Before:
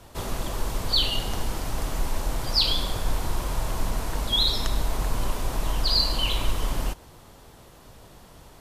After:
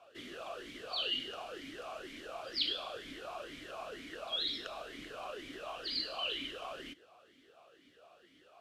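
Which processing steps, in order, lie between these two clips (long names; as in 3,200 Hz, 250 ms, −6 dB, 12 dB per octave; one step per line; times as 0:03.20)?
tilt shelving filter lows −5 dB, about 700 Hz
formant filter swept between two vowels a-i 2.1 Hz
level +1 dB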